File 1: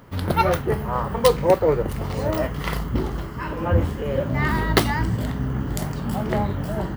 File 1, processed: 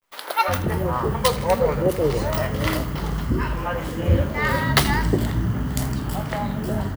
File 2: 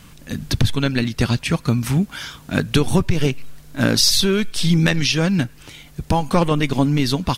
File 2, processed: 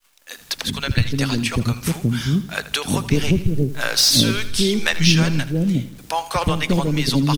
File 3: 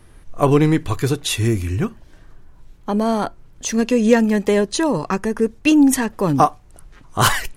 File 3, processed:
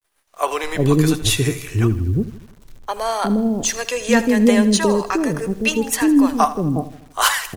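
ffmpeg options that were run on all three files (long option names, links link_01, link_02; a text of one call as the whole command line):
ffmpeg -i in.wav -filter_complex "[0:a]agate=range=-33dB:threshold=-36dB:ratio=3:detection=peak,highshelf=frequency=2900:gain=4.5,acrossover=split=520[link_01][link_02];[link_01]adelay=360[link_03];[link_03][link_02]amix=inputs=2:normalize=0,acrossover=split=130|3700[link_04][link_05][link_06];[link_06]asoftclip=type=tanh:threshold=-13dB[link_07];[link_04][link_05][link_07]amix=inputs=3:normalize=0,dynaudnorm=framelen=320:gausssize=11:maxgain=4dB,asplit=2[link_08][link_09];[link_09]aecho=0:1:80|160|240|320|400:0.168|0.0907|0.049|0.0264|0.0143[link_10];[link_08][link_10]amix=inputs=2:normalize=0,acrusher=bits=9:dc=4:mix=0:aa=0.000001" out.wav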